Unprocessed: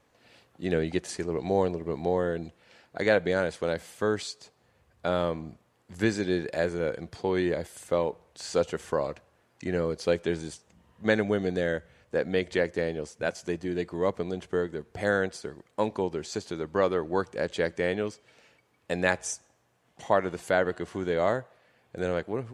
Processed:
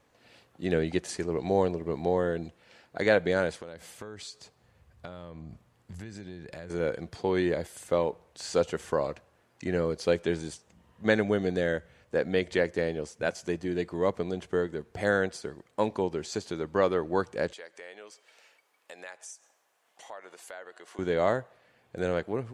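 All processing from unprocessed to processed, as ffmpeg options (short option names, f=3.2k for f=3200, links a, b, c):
-filter_complex "[0:a]asettb=1/sr,asplit=3[a][b][c];[a]atrim=end=3.604[d];[b]atrim=start=3.6:end=6.7,asetpts=PTS-STARTPTS,afade=t=in:d=0.004:c=qsin,afade=t=out:st=3.096:d=0.004:c=qsin,asubboost=boost=4:cutoff=200,acompressor=threshold=-38dB:ratio=8:attack=3.2:release=140:knee=1:detection=peak[e];[c]atrim=start=6.696[f];[d][e]acrossfade=d=0.004:c1=hsin:c2=qsin[g];[g][f]acrossfade=d=0.004:c1=qsin:c2=hsin,asettb=1/sr,asplit=3[h][i][j];[h]atrim=end=17.534[k];[i]atrim=start=17.53:end=20.99,asetpts=PTS-STARTPTS,afade=t=in:d=0.004:c=qsin,afade=t=out:st=3.456:d=0.004:c=qsin,highpass=600,highshelf=f=8.6k:g=6,acompressor=threshold=-48dB:ratio=2.5:attack=3.2:release=140:knee=1:detection=peak[l];[j]atrim=start=20.986[m];[k][l]acrossfade=d=0.004:c1=hsin:c2=qsin[n];[n][m]acrossfade=d=0.004:c1=qsin:c2=hsin"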